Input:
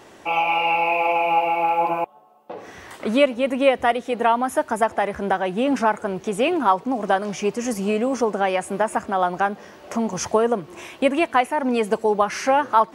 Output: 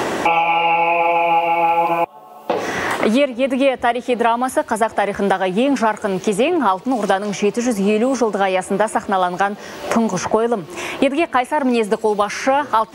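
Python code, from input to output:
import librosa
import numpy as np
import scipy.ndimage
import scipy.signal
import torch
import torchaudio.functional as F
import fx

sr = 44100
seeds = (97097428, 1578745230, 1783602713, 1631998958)

y = fx.band_squash(x, sr, depth_pct=100)
y = y * 10.0 ** (3.0 / 20.0)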